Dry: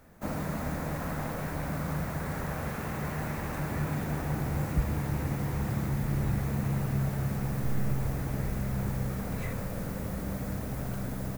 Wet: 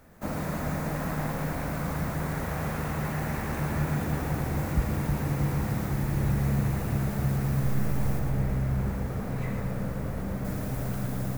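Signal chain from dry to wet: 8.19–10.45 s: treble shelf 3.3 kHz -8.5 dB; two-band feedback delay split 380 Hz, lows 316 ms, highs 115 ms, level -6 dB; trim +1.5 dB

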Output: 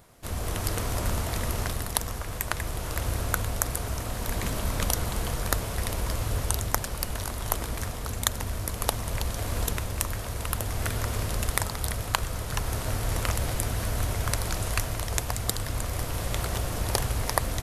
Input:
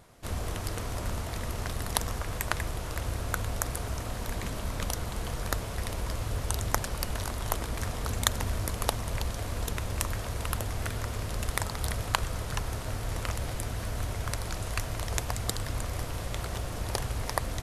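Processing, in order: treble shelf 12 kHz +10 dB; level rider gain up to 5 dB

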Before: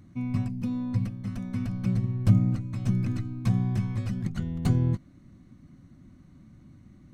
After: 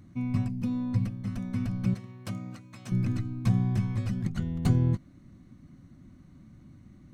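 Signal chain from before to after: 1.94–2.92 s: high-pass 920 Hz 6 dB/octave

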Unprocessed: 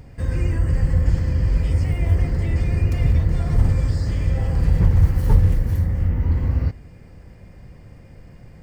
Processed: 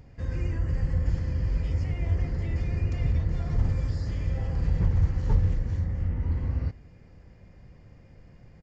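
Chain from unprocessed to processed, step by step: resampled via 16 kHz; trim -8 dB

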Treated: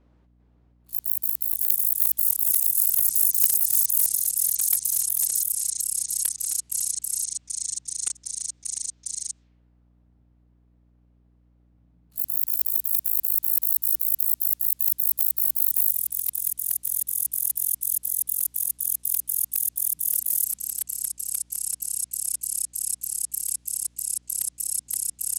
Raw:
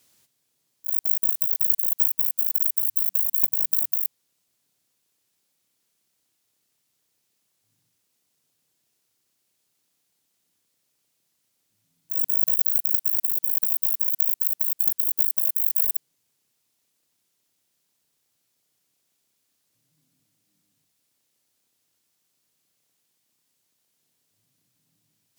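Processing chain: level-controlled noise filter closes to 900 Hz, open at -21.5 dBFS; ever faster or slower copies 397 ms, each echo -4 st, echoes 3; hum 60 Hz, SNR 34 dB; trim +8.5 dB

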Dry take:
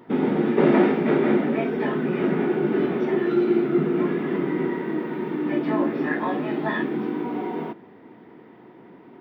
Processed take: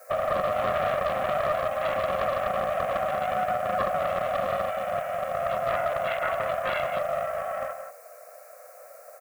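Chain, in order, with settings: low-pass 2.3 kHz; bass shelf 170 Hz +9.5 dB; peak limiter -14 dBFS, peak gain reduction 9 dB; added noise blue -52 dBFS; static phaser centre 1.2 kHz, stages 4; frequency shift +380 Hz; on a send: delay 176 ms -7 dB; on the sum: loudspeaker Doppler distortion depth 0.45 ms

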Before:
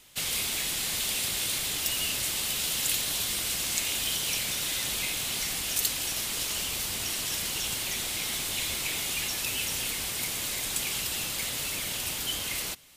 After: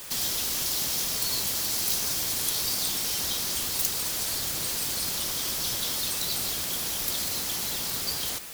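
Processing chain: wide varispeed 1.52×; added noise white -43 dBFS; trim +2 dB

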